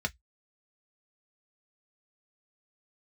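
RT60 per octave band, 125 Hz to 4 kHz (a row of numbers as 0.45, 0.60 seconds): 0.15, 0.10, 0.05, 0.10, 0.10, 0.10 seconds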